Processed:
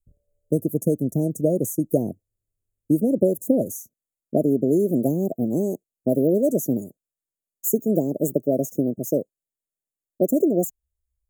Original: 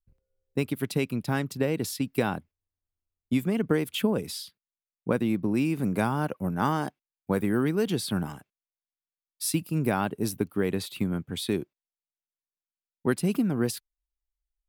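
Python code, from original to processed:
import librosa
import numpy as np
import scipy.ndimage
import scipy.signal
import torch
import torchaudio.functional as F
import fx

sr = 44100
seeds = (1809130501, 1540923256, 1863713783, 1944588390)

y = fx.speed_glide(x, sr, from_pct=109, to_pct=151)
y = scipy.signal.sosfilt(scipy.signal.cheby1(5, 1.0, [660.0, 6700.0], 'bandstop', fs=sr, output='sos'), y)
y = y * 10.0 ** (7.0 / 20.0)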